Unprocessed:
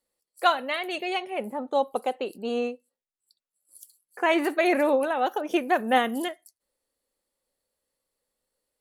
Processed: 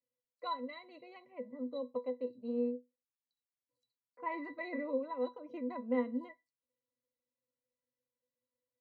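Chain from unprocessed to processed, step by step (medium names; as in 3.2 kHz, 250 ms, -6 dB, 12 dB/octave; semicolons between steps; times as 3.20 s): low-pass 6.4 kHz; pitch-class resonator B, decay 0.16 s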